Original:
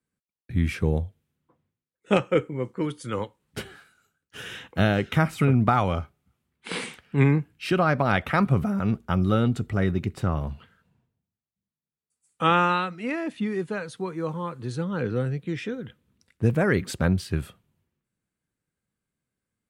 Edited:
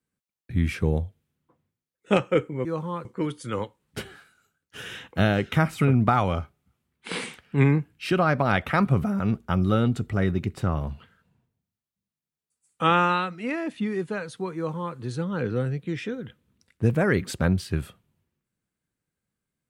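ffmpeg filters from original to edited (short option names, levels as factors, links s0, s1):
-filter_complex "[0:a]asplit=3[s0][s1][s2];[s0]atrim=end=2.652[s3];[s1]atrim=start=14.158:end=14.562[s4];[s2]atrim=start=2.648[s5];[s3][s4]acrossfade=d=0.004:c1=hsin:c2=hsin[s6];[s6][s5]acrossfade=d=0.004:c1=hsin:c2=hsin"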